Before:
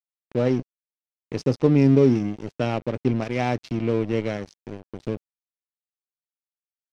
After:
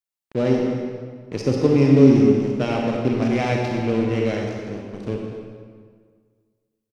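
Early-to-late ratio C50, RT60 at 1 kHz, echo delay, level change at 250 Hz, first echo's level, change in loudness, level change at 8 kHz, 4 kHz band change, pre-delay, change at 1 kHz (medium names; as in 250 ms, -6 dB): 0.0 dB, 1.7 s, 250 ms, +4.5 dB, -13.5 dB, +3.5 dB, no reading, +4.5 dB, 31 ms, +3.0 dB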